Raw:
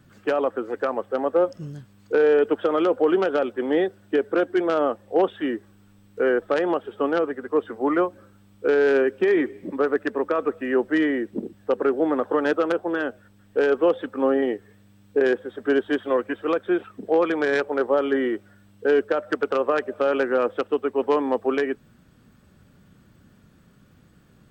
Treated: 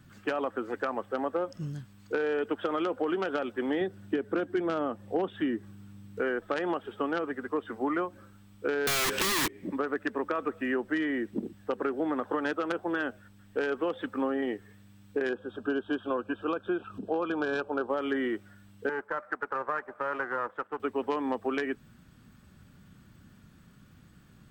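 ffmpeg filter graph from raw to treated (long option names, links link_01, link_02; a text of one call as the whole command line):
ffmpeg -i in.wav -filter_complex "[0:a]asettb=1/sr,asplit=3[link_01][link_02][link_03];[link_01]atrim=end=3.814[link_04];[link_02]atrim=start=3.81:end=6.2,asetpts=PTS-STARTPTS,afade=type=in:duration=0.004:curve=qsin,afade=type=out:start_time=2.386:duration=0.004:curve=qsin,highpass=90,lowshelf=frequency=310:gain=10.5[link_05];[link_03]atrim=start=6.196[link_06];[link_04][link_05]acrossfade=duration=0.004:curve1=hsin:curve2=qsin[link_07];[link_07][link_06]acrossfade=duration=0.004:curve1=qsin:curve2=hsin,asettb=1/sr,asplit=3[link_08][link_09][link_10];[link_08]atrim=end=8.874[link_11];[link_09]atrim=start=8.87:end=9.48,asetpts=PTS-STARTPTS,afade=type=in:duration=0.004:curve=qsin,afade=type=out:start_time=0.606:duration=0.004:curve=qsin,asplit=2[link_12][link_13];[link_13]highpass=frequency=720:poles=1,volume=34dB,asoftclip=type=tanh:threshold=-9.5dB[link_14];[link_12][link_14]amix=inputs=2:normalize=0,lowpass=frequency=4000:poles=1,volume=-6dB,highshelf=frequency=2600:gain=12,aeval=exprs='(mod(5.62*val(0)+1,2)-1)/5.62':channel_layout=same[link_15];[link_10]atrim=start=9.476[link_16];[link_11][link_15]acrossfade=duration=0.004:curve1=hsin:curve2=qsin[link_17];[link_17][link_16]acrossfade=duration=0.004:curve1=qsin:curve2=hsin,asettb=1/sr,asplit=3[link_18][link_19][link_20];[link_18]atrim=end=15.294[link_21];[link_19]atrim=start=15.29:end=17.9,asetpts=PTS-STARTPTS,afade=type=in:duration=0.004:curve=qsin,afade=type=out:start_time=2.606:duration=0.004:curve=qsin,highshelf=frequency=4500:gain=-11.5,acompressor=mode=upward:threshold=-34dB:ratio=2.5:attack=3.2:release=140:knee=2.83:detection=peak,asuperstop=centerf=2000:order=8:qfactor=2.6[link_22];[link_20]atrim=start=17.896[link_23];[link_21][link_22]acrossfade=duration=0.004:curve1=hsin:curve2=qsin[link_24];[link_24][link_23]acrossfade=duration=0.004:curve1=qsin:curve2=hsin,asettb=1/sr,asplit=3[link_25][link_26][link_27];[link_25]atrim=end=18.894[link_28];[link_26]atrim=start=18.89:end=20.8,asetpts=PTS-STARTPTS,afade=type=in:duration=0.004:curve=qsin,afade=type=out:start_time=1.906:duration=0.004:curve=qsin,aeval=exprs='if(lt(val(0),0),0.447*val(0),val(0))':channel_layout=same,highpass=frequency=820:poles=1,highshelf=frequency=2200:width_type=q:width=1.5:gain=-12.5[link_29];[link_27]atrim=start=20.796[link_30];[link_28][link_29]acrossfade=duration=0.004:curve1=hsin:curve2=qsin[link_31];[link_31][link_30]acrossfade=duration=0.004:curve1=qsin:curve2=hsin,equalizer=frequency=490:width=1.2:gain=-7,acompressor=threshold=-26dB:ratio=6" out.wav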